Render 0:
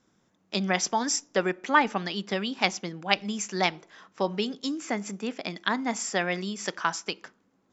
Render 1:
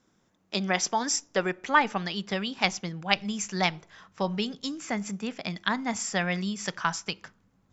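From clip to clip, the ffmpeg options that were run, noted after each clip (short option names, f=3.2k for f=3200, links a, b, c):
-af "asubboost=boost=11:cutoff=98"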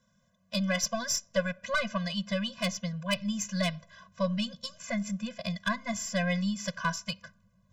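-af "aeval=exprs='(tanh(7.08*val(0)+0.35)-tanh(0.35))/7.08':c=same,equalizer=f=2.3k:w=4.3:g=-4,afftfilt=real='re*eq(mod(floor(b*sr/1024/240),2),0)':imag='im*eq(mod(floor(b*sr/1024/240),2),0)':win_size=1024:overlap=0.75,volume=2.5dB"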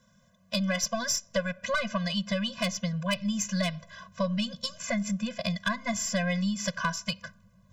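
-af "acompressor=threshold=-34dB:ratio=2.5,volume=6.5dB"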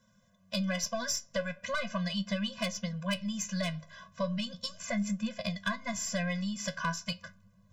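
-af "flanger=delay=9.1:depth=3.9:regen=61:speed=0.38:shape=triangular"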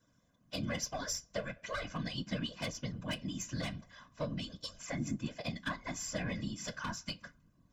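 -filter_complex "[0:a]acrossover=split=600|1500[a][b][c];[b]asoftclip=type=hard:threshold=-35dB[d];[a][d][c]amix=inputs=3:normalize=0,afftfilt=real='hypot(re,im)*cos(2*PI*random(0))':imag='hypot(re,im)*sin(2*PI*random(1))':win_size=512:overlap=0.75,volume=1dB"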